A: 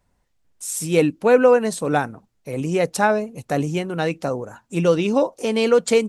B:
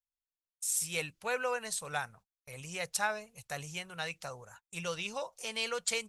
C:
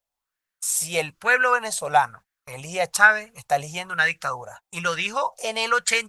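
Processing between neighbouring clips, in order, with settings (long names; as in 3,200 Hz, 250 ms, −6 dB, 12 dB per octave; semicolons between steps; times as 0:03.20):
noise gate −40 dBFS, range −28 dB; guitar amp tone stack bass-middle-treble 10-0-10; level −4 dB
auto-filter bell 1.1 Hz 630–1,800 Hz +15 dB; level +8 dB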